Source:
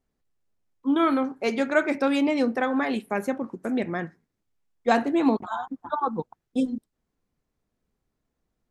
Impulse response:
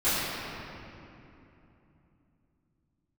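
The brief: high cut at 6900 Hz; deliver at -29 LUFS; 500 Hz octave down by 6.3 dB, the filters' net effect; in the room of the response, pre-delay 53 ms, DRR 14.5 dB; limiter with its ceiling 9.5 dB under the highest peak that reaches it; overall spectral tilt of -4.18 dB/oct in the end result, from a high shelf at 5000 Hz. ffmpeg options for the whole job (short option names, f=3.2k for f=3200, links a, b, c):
-filter_complex "[0:a]lowpass=6.9k,equalizer=f=500:t=o:g=-8,highshelf=f=5k:g=-7,alimiter=limit=-18.5dB:level=0:latency=1,asplit=2[a][b];[1:a]atrim=start_sample=2205,adelay=53[c];[b][c]afir=irnorm=-1:irlink=0,volume=-29.5dB[d];[a][d]amix=inputs=2:normalize=0,volume=1dB"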